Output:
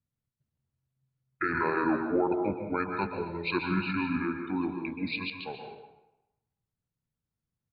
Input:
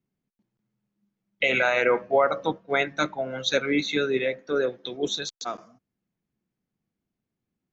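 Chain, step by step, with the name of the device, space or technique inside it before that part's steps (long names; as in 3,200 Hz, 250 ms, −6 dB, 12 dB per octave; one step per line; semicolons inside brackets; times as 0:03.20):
monster voice (pitch shifter −7.5 semitones; low-shelf EQ 110 Hz +4.5 dB; convolution reverb RT60 0.95 s, pre-delay 120 ms, DRR 4 dB)
0:03.26–0:05.33: parametric band 4,300 Hz +5.5 dB 1.2 octaves
level −7 dB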